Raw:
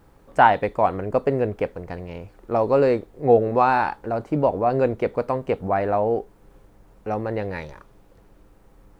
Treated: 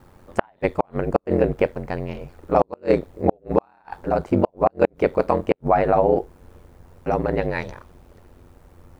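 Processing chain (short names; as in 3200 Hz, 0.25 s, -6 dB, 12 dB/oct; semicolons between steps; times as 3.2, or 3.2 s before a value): ring modulator 45 Hz; flipped gate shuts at -10 dBFS, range -41 dB; gain +7 dB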